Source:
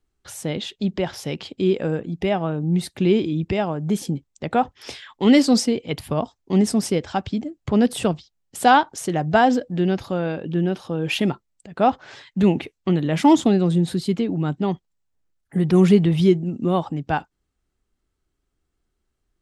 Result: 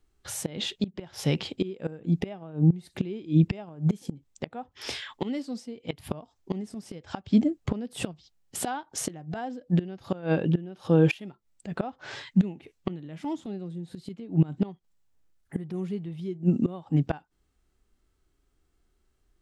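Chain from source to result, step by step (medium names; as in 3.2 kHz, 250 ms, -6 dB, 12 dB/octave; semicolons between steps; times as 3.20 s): inverted gate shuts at -15 dBFS, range -24 dB; harmonic-percussive split harmonic +7 dB; trim -1 dB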